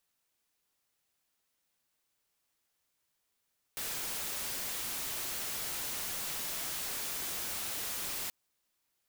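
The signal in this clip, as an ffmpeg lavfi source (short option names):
-f lavfi -i "anoisesrc=c=white:a=0.0231:d=4.53:r=44100:seed=1"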